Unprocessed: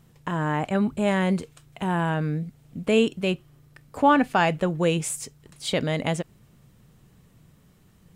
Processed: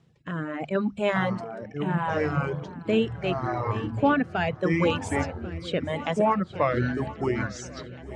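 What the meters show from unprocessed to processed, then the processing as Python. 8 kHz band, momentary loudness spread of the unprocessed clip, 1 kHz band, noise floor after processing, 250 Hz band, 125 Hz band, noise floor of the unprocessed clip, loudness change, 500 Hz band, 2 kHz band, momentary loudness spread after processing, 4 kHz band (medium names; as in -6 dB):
-9.5 dB, 13 LU, -1.5 dB, -46 dBFS, -1.5 dB, -0.5 dB, -57 dBFS, -2.0 dB, 0.0 dB, -0.5 dB, 10 LU, -4.0 dB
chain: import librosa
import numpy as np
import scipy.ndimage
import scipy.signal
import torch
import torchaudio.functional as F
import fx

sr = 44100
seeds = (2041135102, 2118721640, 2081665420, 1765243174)

p1 = fx.spec_quant(x, sr, step_db=15)
p2 = fx.hum_notches(p1, sr, base_hz=50, count=4)
p3 = fx.echo_pitch(p2, sr, ms=795, semitones=-5, count=3, db_per_echo=-3.0)
p4 = fx.dynamic_eq(p3, sr, hz=1200.0, q=0.8, threshold_db=-36.0, ratio=4.0, max_db=5)
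p5 = fx.dereverb_blind(p4, sr, rt60_s=1.6)
p6 = scipy.signal.sosfilt(scipy.signal.butter(2, 69.0, 'highpass', fs=sr, output='sos'), p5)
p7 = p6 + fx.echo_swing(p6, sr, ms=1090, ratio=3, feedback_pct=52, wet_db=-17.0, dry=0)
p8 = fx.rotary_switch(p7, sr, hz=0.75, then_hz=5.5, switch_at_s=6.05)
y = scipy.signal.sosfilt(scipy.signal.butter(2, 4800.0, 'lowpass', fs=sr, output='sos'), p8)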